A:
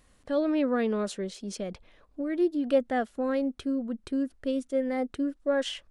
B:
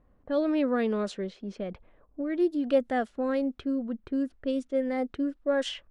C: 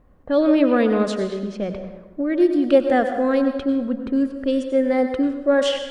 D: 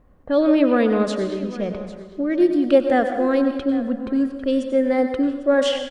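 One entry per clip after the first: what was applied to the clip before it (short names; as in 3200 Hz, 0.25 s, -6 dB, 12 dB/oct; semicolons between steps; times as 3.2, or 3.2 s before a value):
low-pass opened by the level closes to 900 Hz, open at -23 dBFS
plate-style reverb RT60 1.2 s, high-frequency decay 0.6×, pre-delay 80 ms, DRR 6.5 dB; gain +8.5 dB
echo 0.799 s -17 dB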